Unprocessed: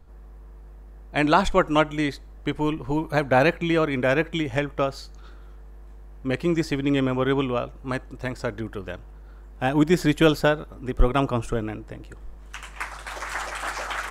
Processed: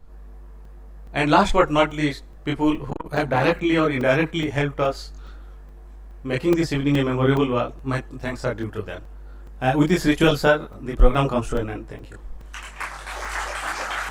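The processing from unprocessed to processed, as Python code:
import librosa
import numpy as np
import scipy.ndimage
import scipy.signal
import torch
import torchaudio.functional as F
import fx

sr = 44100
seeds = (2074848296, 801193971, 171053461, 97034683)

y = fx.chorus_voices(x, sr, voices=6, hz=0.55, base_ms=25, depth_ms=5.0, mix_pct=50)
y = fx.buffer_crackle(y, sr, first_s=0.65, period_s=0.42, block=128, kind='zero')
y = fx.transformer_sat(y, sr, knee_hz=1000.0, at=(2.9, 3.53))
y = y * 10.0 ** (5.5 / 20.0)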